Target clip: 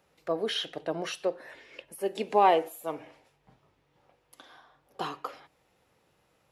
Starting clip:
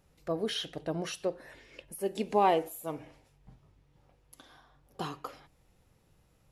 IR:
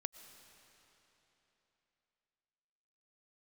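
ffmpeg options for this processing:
-filter_complex "[0:a]highpass=f=200:p=1,acrossover=split=340|4300[s0][s1][s2];[s1]acontrast=72[s3];[s0][s3][s2]amix=inputs=3:normalize=0,volume=0.794"

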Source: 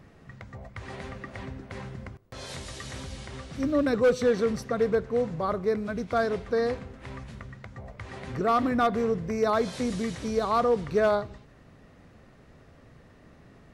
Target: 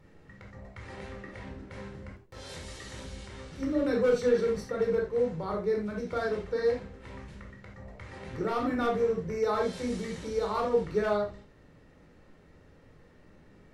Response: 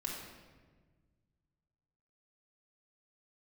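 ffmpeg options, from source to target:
-filter_complex "[1:a]atrim=start_sample=2205,atrim=end_sample=6174,asetrate=66150,aresample=44100[s0];[0:a][s0]afir=irnorm=-1:irlink=0,volume=0.891"

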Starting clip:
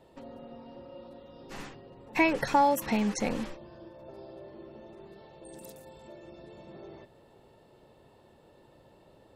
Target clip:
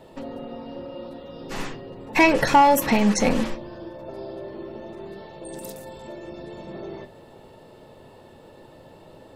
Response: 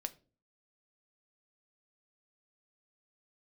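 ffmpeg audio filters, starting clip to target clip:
-filter_complex "[0:a]aeval=exprs='0.251*(cos(1*acos(clip(val(0)/0.251,-1,1)))-cos(1*PI/2))+0.0282*(cos(5*acos(clip(val(0)/0.251,-1,1)))-cos(5*PI/2))':c=same[s0];[1:a]atrim=start_sample=2205[s1];[s0][s1]afir=irnorm=-1:irlink=0,volume=2.66"

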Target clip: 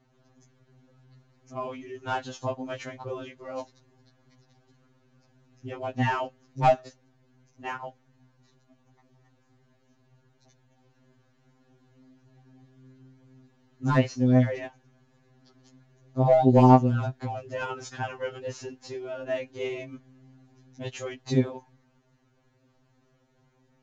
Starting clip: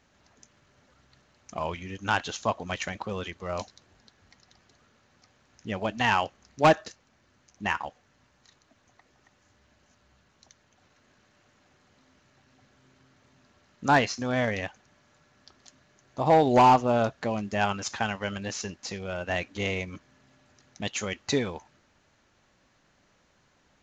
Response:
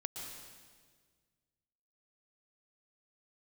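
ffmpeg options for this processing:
-af "tiltshelf=f=750:g=7,afftfilt=real='re*2.45*eq(mod(b,6),0)':imag='im*2.45*eq(mod(b,6),0)':win_size=2048:overlap=0.75"

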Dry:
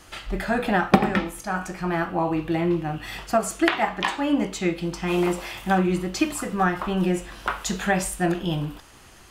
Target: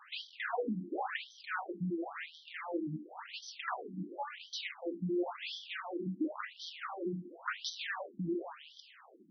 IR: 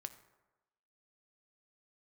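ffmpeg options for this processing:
-af "aeval=exprs='(tanh(28.2*val(0)+0.4)-tanh(0.4))/28.2':c=same,afftfilt=real='re*between(b*sr/1024,230*pow(4400/230,0.5+0.5*sin(2*PI*0.94*pts/sr))/1.41,230*pow(4400/230,0.5+0.5*sin(2*PI*0.94*pts/sr))*1.41)':imag='im*between(b*sr/1024,230*pow(4400/230,0.5+0.5*sin(2*PI*0.94*pts/sr))/1.41,230*pow(4400/230,0.5+0.5*sin(2*PI*0.94*pts/sr))*1.41)':win_size=1024:overlap=0.75,volume=1.12"

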